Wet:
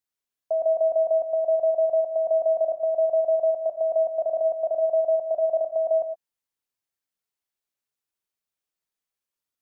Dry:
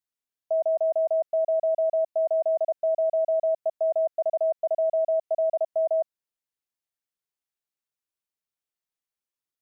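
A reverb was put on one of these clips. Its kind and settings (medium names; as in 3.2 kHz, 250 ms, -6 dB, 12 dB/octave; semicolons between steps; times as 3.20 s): gated-style reverb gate 140 ms flat, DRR 7 dB; trim +1.5 dB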